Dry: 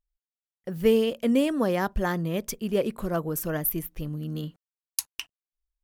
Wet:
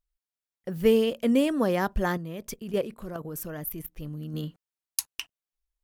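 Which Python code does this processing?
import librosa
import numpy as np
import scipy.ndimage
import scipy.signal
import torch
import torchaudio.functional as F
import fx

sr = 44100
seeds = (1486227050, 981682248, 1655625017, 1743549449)

y = fx.level_steps(x, sr, step_db=12, at=(2.17, 4.34))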